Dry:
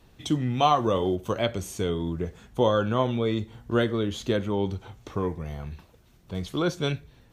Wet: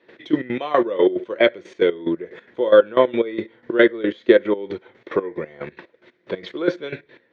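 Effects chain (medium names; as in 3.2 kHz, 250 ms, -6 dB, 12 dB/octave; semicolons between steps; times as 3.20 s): tilt EQ +2.5 dB/octave; in parallel at +1 dB: peak limiter -33 dBFS, peak gain reduction 24 dB; on the sum: trance gate ".x..x.x." 182 bpm -12 dB; cabinet simulation 270–2900 Hz, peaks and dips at 350 Hz +9 dB, 520 Hz +7 dB, 780 Hz -9 dB, 1.2 kHz -7 dB, 1.9 kHz +7 dB, 2.8 kHz -9 dB; transient shaper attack +3 dB, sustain -3 dB; trim +8 dB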